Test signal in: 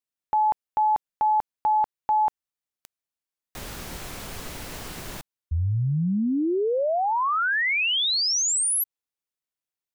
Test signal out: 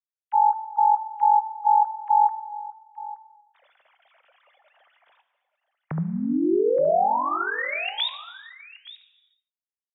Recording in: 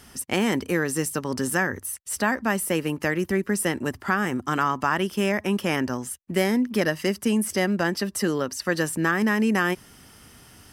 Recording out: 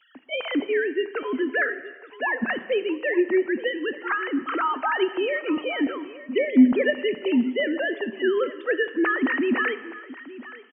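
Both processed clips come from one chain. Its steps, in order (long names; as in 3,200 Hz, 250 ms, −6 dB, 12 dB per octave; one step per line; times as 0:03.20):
three sine waves on the formant tracks
on a send: single-tap delay 873 ms −17 dB
on the sum: reverb whose tail is shaped and stops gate 470 ms falling, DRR 11.5 dB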